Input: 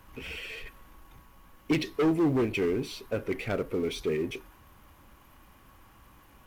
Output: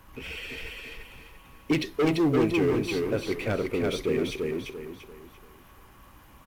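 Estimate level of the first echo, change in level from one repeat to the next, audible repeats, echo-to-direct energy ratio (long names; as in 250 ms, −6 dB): −3.0 dB, −9.0 dB, 4, −2.5 dB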